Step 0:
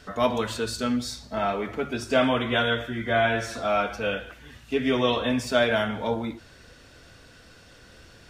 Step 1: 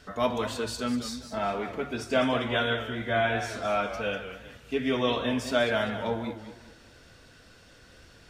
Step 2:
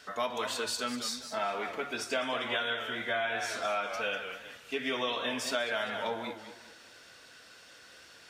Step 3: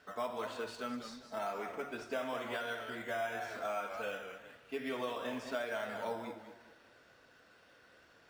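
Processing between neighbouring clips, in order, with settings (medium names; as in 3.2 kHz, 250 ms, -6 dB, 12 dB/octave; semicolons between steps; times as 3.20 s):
modulated delay 198 ms, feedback 35%, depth 138 cents, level -11 dB; trim -3.5 dB
high-pass 930 Hz 6 dB/octave; compression 6:1, threshold -32 dBFS, peak gain reduction 8 dB; trim +3.5 dB
low-pass 1.4 kHz 6 dB/octave; in parallel at -10 dB: decimation with a swept rate 8×, swing 60% 1 Hz; on the sum: reverberation RT60 0.25 s, pre-delay 35 ms, DRR 12.5 dB; trim -6 dB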